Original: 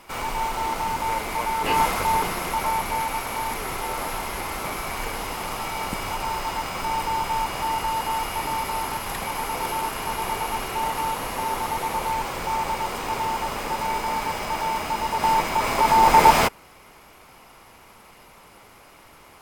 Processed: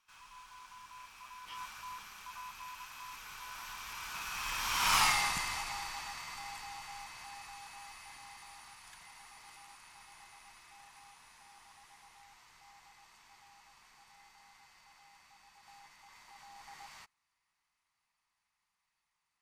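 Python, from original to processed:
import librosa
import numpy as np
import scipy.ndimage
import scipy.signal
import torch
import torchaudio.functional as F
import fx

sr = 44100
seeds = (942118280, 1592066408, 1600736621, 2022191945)

y = fx.doppler_pass(x, sr, speed_mps=37, closest_m=5.0, pass_at_s=4.99)
y = fx.curve_eq(y, sr, hz=(150.0, 530.0, 990.0, 1400.0, 3100.0, 5900.0, 15000.0), db=(0, -11, 8, 9, 12, 15, 4))
y = F.gain(torch.from_numpy(y), -4.0).numpy()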